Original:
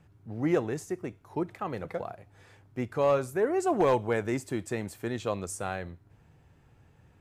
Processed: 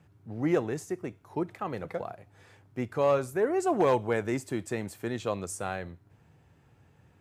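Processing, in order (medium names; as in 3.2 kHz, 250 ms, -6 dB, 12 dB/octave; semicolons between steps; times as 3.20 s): high-pass 74 Hz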